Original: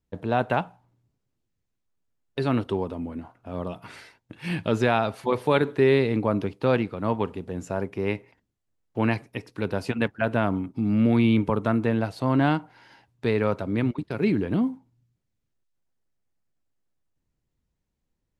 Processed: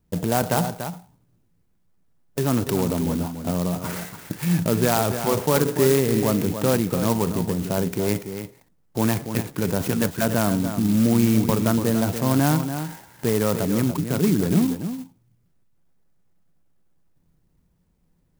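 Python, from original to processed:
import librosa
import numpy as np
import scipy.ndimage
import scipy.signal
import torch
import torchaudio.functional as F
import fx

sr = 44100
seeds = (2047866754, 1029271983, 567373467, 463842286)

p1 = scipy.signal.sosfilt(scipy.signal.butter(2, 5500.0, 'lowpass', fs=sr, output='sos'), x)
p2 = fx.peak_eq(p1, sr, hz=170.0, db=9.5, octaves=0.33)
p3 = fx.over_compress(p2, sr, threshold_db=-34.0, ratio=-1.0)
p4 = p2 + F.gain(torch.from_numpy(p3), -0.5).numpy()
p5 = p4 + 10.0 ** (-9.0 / 20.0) * np.pad(p4, (int(288 * sr / 1000.0), 0))[:len(p4)]
y = fx.clock_jitter(p5, sr, seeds[0], jitter_ms=0.088)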